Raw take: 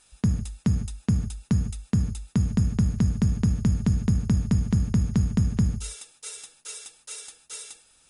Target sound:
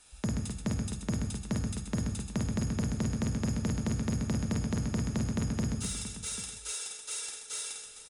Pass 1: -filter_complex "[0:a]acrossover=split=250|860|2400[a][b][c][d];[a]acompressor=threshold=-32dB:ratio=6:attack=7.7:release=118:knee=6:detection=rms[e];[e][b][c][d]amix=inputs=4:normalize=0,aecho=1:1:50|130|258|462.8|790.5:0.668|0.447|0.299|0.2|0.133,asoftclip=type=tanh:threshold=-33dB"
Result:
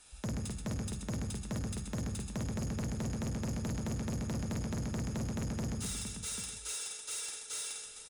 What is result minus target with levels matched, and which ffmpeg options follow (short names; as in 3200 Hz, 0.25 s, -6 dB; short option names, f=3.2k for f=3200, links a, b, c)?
soft clip: distortion +8 dB
-filter_complex "[0:a]acrossover=split=250|860|2400[a][b][c][d];[a]acompressor=threshold=-32dB:ratio=6:attack=7.7:release=118:knee=6:detection=rms[e];[e][b][c][d]amix=inputs=4:normalize=0,aecho=1:1:50|130|258|462.8|790.5:0.668|0.447|0.299|0.2|0.133,asoftclip=type=tanh:threshold=-24dB"